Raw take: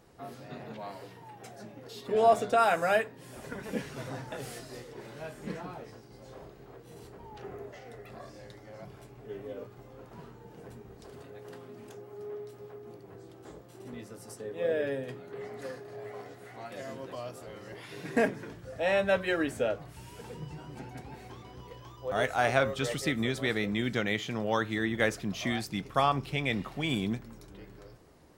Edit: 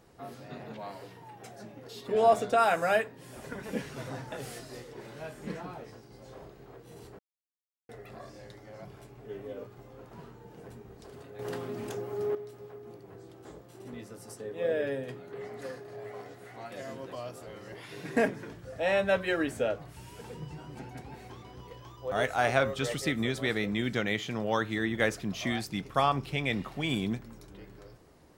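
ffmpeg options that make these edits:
ffmpeg -i in.wav -filter_complex "[0:a]asplit=5[link_01][link_02][link_03][link_04][link_05];[link_01]atrim=end=7.19,asetpts=PTS-STARTPTS,afade=type=out:start_time=7.186:duration=0.004:curve=hsin[link_06];[link_02]atrim=start=7.19:end=7.89,asetpts=PTS-STARTPTS,volume=0[link_07];[link_03]atrim=start=7.89:end=11.392,asetpts=PTS-STARTPTS,afade=type=in:duration=0.004:curve=hsin[link_08];[link_04]atrim=start=11.388:end=12.352,asetpts=PTS-STARTPTS,volume=10dB[link_09];[link_05]atrim=start=12.348[link_10];[link_06][link_07][link_08]concat=n=3:v=0:a=1[link_11];[link_11][link_09]acrossfade=duration=0.004:curve1=hsin:curve2=hsin[link_12];[link_12][link_10]acrossfade=duration=0.004:curve1=hsin:curve2=hsin" out.wav

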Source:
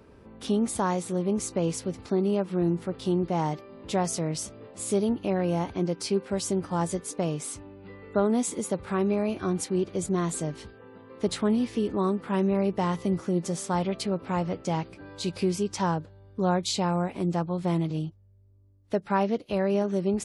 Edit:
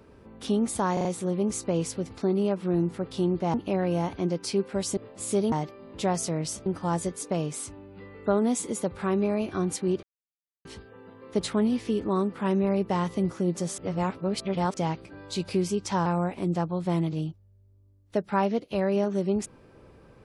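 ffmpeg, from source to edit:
ffmpeg -i in.wav -filter_complex "[0:a]asplit=13[link_01][link_02][link_03][link_04][link_05][link_06][link_07][link_08][link_09][link_10][link_11][link_12][link_13];[link_01]atrim=end=0.972[link_14];[link_02]atrim=start=0.928:end=0.972[link_15];[link_03]atrim=start=0.928:end=0.972[link_16];[link_04]atrim=start=0.928:end=3.422[link_17];[link_05]atrim=start=5.108:end=6.542[link_18];[link_06]atrim=start=4.558:end=5.112[link_19];[link_07]atrim=start=3.418:end=4.562[link_20];[link_08]atrim=start=6.538:end=9.91,asetpts=PTS-STARTPTS,afade=type=out:start_time=3.368:duration=0.004:curve=hsin[link_21];[link_09]atrim=start=9.91:end=10.53,asetpts=PTS-STARTPTS,volume=0[link_22];[link_10]atrim=start=10.53:end=13.662,asetpts=PTS-STARTPTS,afade=type=in:duration=0.004:curve=hsin[link_23];[link_11]atrim=start=13.658:end=14.622,asetpts=PTS-STARTPTS,areverse[link_24];[link_12]atrim=start=14.618:end=15.942[link_25];[link_13]atrim=start=16.838[link_26];[link_14][link_15]acrossfade=duration=0.004:curve1=hsin:curve2=hsin[link_27];[link_27][link_16]acrossfade=duration=0.004:curve1=hsin:curve2=hsin[link_28];[link_28][link_17]acrossfade=duration=0.004:curve1=hsin:curve2=hsin[link_29];[link_29][link_18]acrossfade=duration=0.004:curve1=hsin:curve2=hsin[link_30];[link_30][link_19]acrossfade=duration=0.004:curve1=hsin:curve2=hsin[link_31];[link_31][link_20]acrossfade=duration=0.004:curve1=hsin:curve2=hsin[link_32];[link_21][link_22][link_23]concat=n=3:v=0:a=1[link_33];[link_32][link_33]acrossfade=duration=0.004:curve1=hsin:curve2=hsin[link_34];[link_34][link_24]acrossfade=duration=0.004:curve1=hsin:curve2=hsin[link_35];[link_35][link_25]acrossfade=duration=0.004:curve1=hsin:curve2=hsin[link_36];[link_36][link_26]acrossfade=duration=0.004:curve1=hsin:curve2=hsin" out.wav

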